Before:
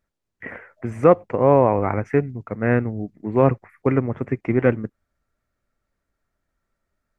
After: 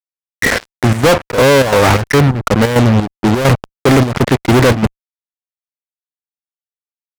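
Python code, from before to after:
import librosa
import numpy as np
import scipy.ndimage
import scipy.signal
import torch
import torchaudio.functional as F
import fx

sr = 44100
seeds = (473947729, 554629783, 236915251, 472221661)

y = fx.fuzz(x, sr, gain_db=39.0, gate_db=-38.0)
y = fx.chopper(y, sr, hz=2.9, depth_pct=60, duty_pct=70)
y = y * 10.0 ** (6.5 / 20.0)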